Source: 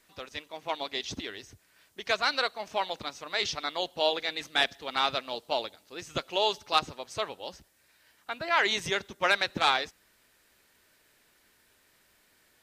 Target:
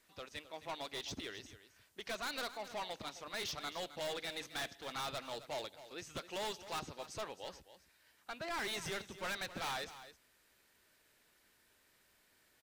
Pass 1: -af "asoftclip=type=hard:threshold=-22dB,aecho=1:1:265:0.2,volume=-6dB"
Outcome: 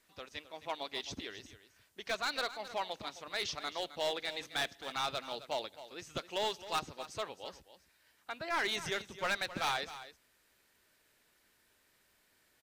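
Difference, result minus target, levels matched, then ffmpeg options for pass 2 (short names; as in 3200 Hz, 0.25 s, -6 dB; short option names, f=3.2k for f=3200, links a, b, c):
hard clip: distortion -6 dB
-af "asoftclip=type=hard:threshold=-31.5dB,aecho=1:1:265:0.2,volume=-6dB"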